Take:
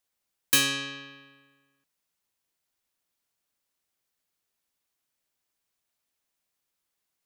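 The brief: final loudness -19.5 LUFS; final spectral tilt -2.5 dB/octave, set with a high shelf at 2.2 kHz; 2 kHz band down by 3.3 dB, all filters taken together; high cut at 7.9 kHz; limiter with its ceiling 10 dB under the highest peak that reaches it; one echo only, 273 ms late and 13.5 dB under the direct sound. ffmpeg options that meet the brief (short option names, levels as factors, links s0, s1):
-af "lowpass=7900,equalizer=f=2000:t=o:g=-7,highshelf=f=2200:g=4.5,alimiter=limit=0.106:level=0:latency=1,aecho=1:1:273:0.211,volume=3.76"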